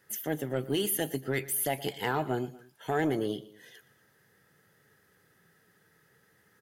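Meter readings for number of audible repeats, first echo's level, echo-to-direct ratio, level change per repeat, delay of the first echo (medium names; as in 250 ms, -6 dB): 2, -18.5 dB, -17.5 dB, -5.5 dB, 118 ms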